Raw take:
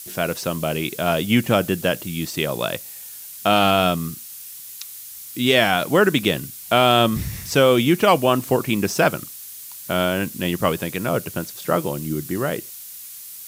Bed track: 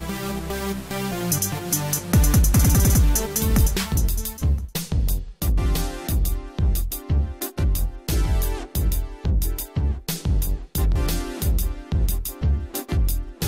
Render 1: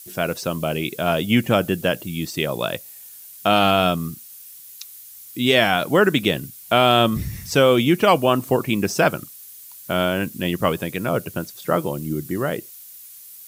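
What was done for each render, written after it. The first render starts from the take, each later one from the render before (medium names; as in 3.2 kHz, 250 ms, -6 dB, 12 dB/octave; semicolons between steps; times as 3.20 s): noise reduction 7 dB, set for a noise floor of -38 dBFS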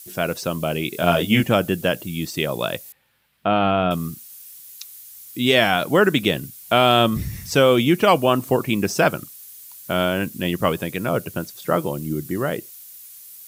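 0.91–1.44 s: doubling 23 ms -2.5 dB; 2.92–3.91 s: distance through air 470 m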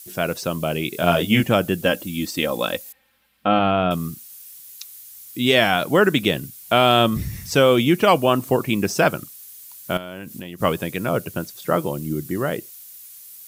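1.85–3.59 s: comb 3.8 ms; 9.97–10.61 s: compression 12:1, threshold -29 dBFS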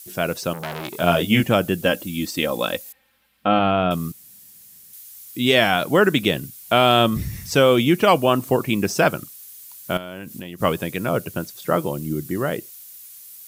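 0.53–1.00 s: transformer saturation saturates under 2.4 kHz; 4.12–4.93 s: room tone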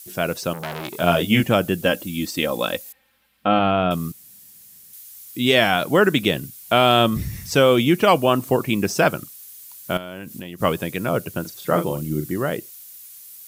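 11.41–12.34 s: doubling 40 ms -7 dB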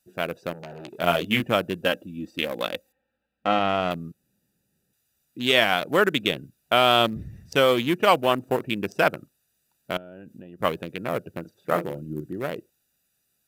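local Wiener filter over 41 samples; bass shelf 340 Hz -11 dB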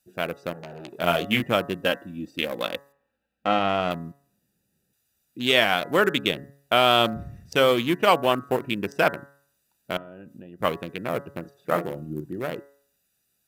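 de-hum 140.4 Hz, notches 14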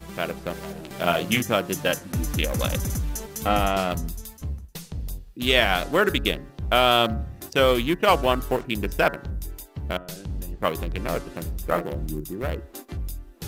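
add bed track -10.5 dB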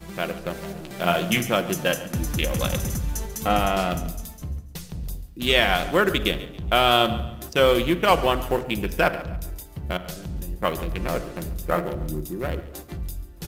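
feedback delay 140 ms, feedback 36%, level -17 dB; simulated room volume 3000 m³, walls furnished, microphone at 0.92 m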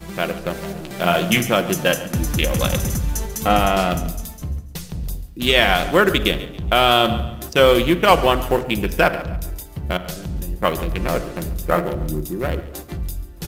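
trim +5 dB; peak limiter -1 dBFS, peak gain reduction 3 dB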